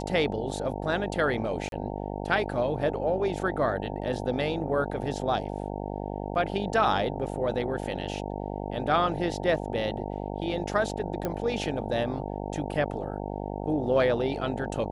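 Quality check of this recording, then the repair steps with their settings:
mains buzz 50 Hz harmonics 18 −34 dBFS
0:01.69–0:01.72: drop-out 32 ms
0:11.25: click −16 dBFS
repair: click removal
hum removal 50 Hz, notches 18
repair the gap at 0:01.69, 32 ms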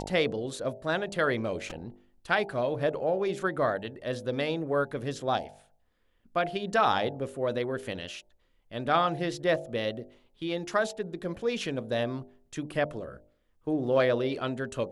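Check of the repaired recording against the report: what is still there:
none of them is left

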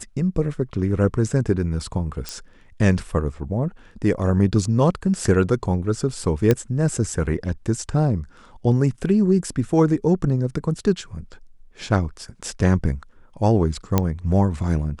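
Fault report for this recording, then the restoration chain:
0:02.29: click −13 dBFS
0:06.51: click −5 dBFS
0:13.98: click −4 dBFS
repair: click removal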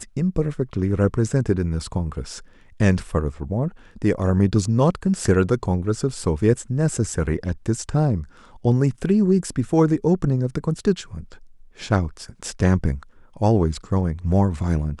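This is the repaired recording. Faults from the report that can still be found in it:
none of them is left

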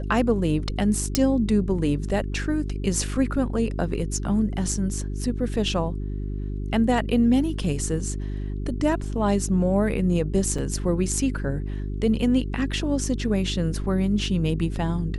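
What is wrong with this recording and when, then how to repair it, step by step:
mains hum 50 Hz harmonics 8 −29 dBFS
0:01.15: click −4 dBFS
0:10.58: drop-out 4.4 ms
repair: click removal
hum removal 50 Hz, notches 8
repair the gap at 0:10.58, 4.4 ms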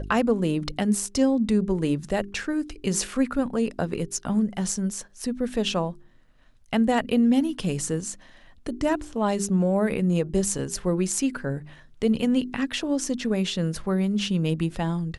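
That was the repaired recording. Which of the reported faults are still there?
0:01.15: click

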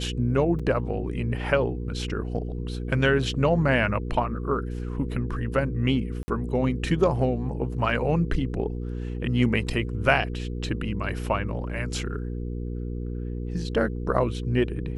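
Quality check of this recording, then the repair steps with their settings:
mains hum 60 Hz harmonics 8 −31 dBFS
0:00.59–0:00.60: drop-out 5.6 ms
0:06.23–0:06.28: drop-out 50 ms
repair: hum removal 60 Hz, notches 8
repair the gap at 0:00.59, 5.6 ms
repair the gap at 0:06.23, 50 ms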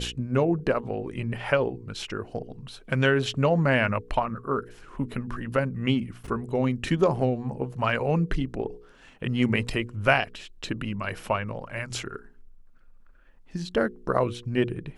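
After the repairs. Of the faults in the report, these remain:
none of them is left

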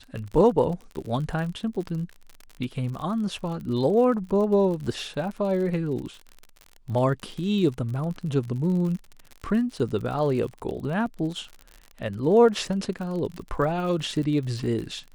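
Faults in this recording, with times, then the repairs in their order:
surface crackle 57 per second −33 dBFS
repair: click removal

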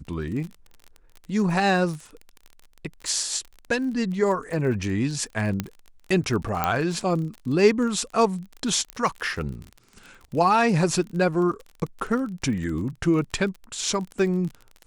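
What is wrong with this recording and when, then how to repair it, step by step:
surface crackle 34 per second −32 dBFS
0:05.60: click −11 dBFS
0:06.64: click −8 dBFS
0:08.90: click −16 dBFS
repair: click removal

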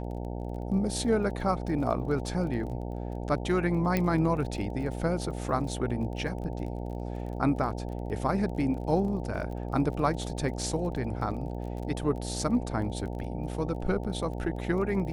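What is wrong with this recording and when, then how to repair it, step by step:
mains buzz 60 Hz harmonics 15 −35 dBFS
surface crackle 24 per second −38 dBFS
0:03.97: click −13 dBFS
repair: click removal
hum removal 60 Hz, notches 15

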